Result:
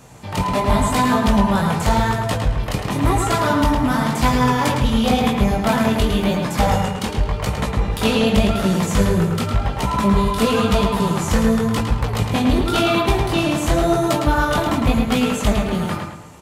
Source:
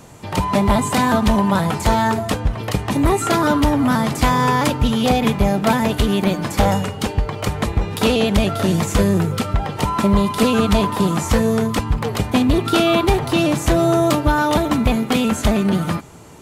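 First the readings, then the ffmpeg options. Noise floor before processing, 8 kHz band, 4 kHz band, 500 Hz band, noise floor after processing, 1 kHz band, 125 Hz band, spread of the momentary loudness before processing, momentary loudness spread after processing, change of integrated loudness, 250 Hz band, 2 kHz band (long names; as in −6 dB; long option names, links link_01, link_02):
−30 dBFS, −1.0 dB, −0.5 dB, −1.5 dB, −28 dBFS, −0.5 dB, 0.0 dB, 6 LU, 5 LU, −0.5 dB, −1.0 dB, 0.0 dB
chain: -filter_complex "[0:a]equalizer=frequency=330:width_type=o:width=0.77:gain=-3.5,flanger=delay=15.5:depth=7.7:speed=0.92,asplit=2[link_01][link_02];[link_02]adelay=108,lowpass=frequency=4900:poles=1,volume=-4dB,asplit=2[link_03][link_04];[link_04]adelay=108,lowpass=frequency=4900:poles=1,volume=0.39,asplit=2[link_05][link_06];[link_06]adelay=108,lowpass=frequency=4900:poles=1,volume=0.39,asplit=2[link_07][link_08];[link_08]adelay=108,lowpass=frequency=4900:poles=1,volume=0.39,asplit=2[link_09][link_10];[link_10]adelay=108,lowpass=frequency=4900:poles=1,volume=0.39[link_11];[link_03][link_05][link_07][link_09][link_11]amix=inputs=5:normalize=0[link_12];[link_01][link_12]amix=inputs=2:normalize=0,volume=1.5dB"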